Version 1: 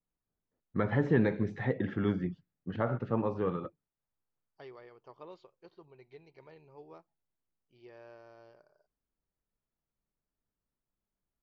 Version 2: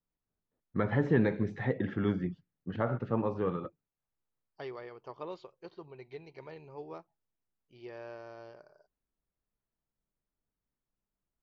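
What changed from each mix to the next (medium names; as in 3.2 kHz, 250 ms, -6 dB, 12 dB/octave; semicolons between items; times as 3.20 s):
second voice +7.5 dB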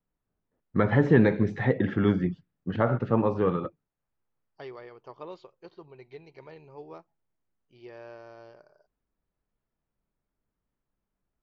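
first voice +7.0 dB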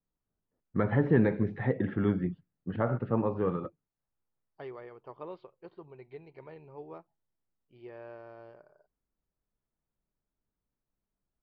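first voice -4.0 dB; master: add distance through air 340 m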